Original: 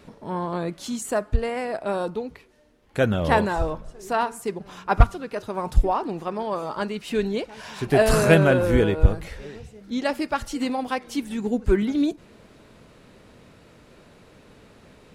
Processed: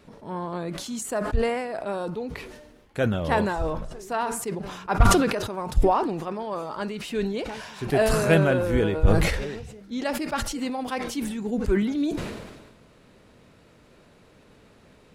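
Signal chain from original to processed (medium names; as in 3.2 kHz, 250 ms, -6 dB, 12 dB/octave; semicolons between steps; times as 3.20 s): decay stretcher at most 43 dB/s; trim -4 dB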